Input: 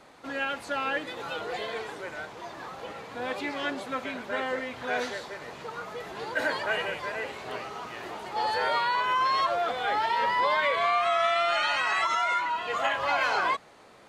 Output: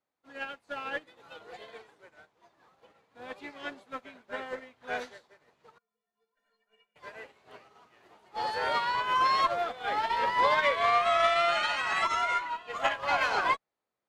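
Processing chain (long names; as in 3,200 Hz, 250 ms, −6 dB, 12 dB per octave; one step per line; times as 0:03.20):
harmonic generator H 4 −23 dB, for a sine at −14 dBFS
0:05.78–0:06.96: stiff-string resonator 210 Hz, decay 0.36 s, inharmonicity 0.03
expander for the loud parts 2.5 to 1, over −48 dBFS
level +2 dB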